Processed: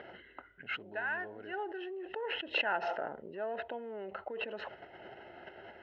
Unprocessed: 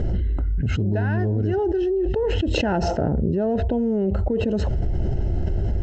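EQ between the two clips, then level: high-pass 1.2 kHz 12 dB/octave; low-pass 2.8 kHz 24 dB/octave; 0.0 dB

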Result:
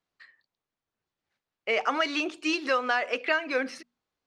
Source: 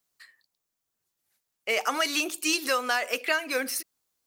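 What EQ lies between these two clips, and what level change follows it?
tape spacing loss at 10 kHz 39 dB; treble shelf 2 kHz +9 dB; hum notches 60/120/180/240 Hz; +3.0 dB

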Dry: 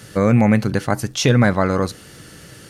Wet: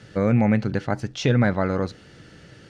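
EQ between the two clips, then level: distance through air 130 m; peaking EQ 1.1 kHz -6 dB 0.22 oct; -4.5 dB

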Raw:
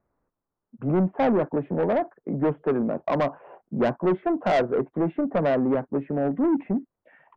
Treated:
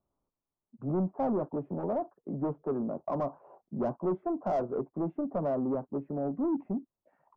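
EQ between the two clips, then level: distance through air 93 m; high-order bell 2.6 kHz -16 dB; band-stop 480 Hz, Q 12; -7.5 dB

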